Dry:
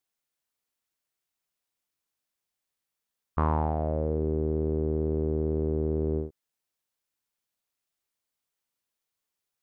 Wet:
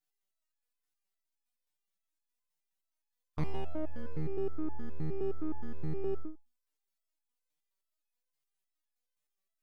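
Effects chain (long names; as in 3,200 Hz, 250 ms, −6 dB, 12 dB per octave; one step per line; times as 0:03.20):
gain on one half-wave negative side −12 dB
step-sequenced resonator 9.6 Hz 150–840 Hz
level +10 dB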